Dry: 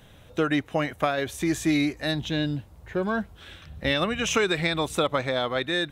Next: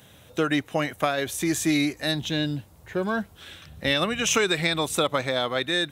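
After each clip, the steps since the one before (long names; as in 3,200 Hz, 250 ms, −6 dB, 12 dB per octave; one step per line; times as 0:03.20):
high-pass filter 85 Hz
high-shelf EQ 5,000 Hz +9.5 dB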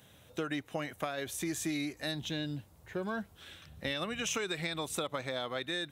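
downward compressor 3 to 1, threshold −25 dBFS, peak gain reduction 6 dB
level −7.5 dB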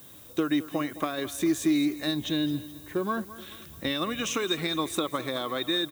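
hollow resonant body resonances 310/1,100/3,700 Hz, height 10 dB, ringing for 25 ms
background noise violet −53 dBFS
repeating echo 214 ms, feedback 45%, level −16 dB
level +2.5 dB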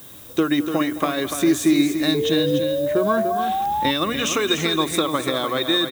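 mains-hum notches 60/120/180/240/300 Hz
single-tap delay 293 ms −8 dB
sound drawn into the spectrogram rise, 0:02.14–0:03.91, 430–890 Hz −30 dBFS
level +7.5 dB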